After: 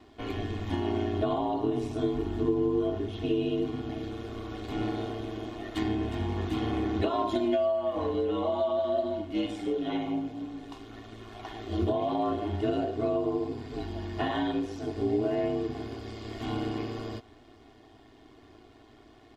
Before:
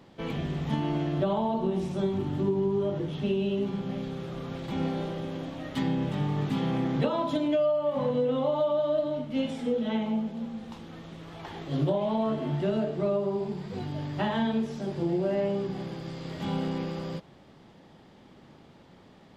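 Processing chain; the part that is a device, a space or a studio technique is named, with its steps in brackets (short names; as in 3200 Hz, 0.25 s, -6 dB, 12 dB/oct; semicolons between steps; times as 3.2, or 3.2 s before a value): ring-modulated robot voice (ring modulator 55 Hz; comb 2.8 ms, depth 87%)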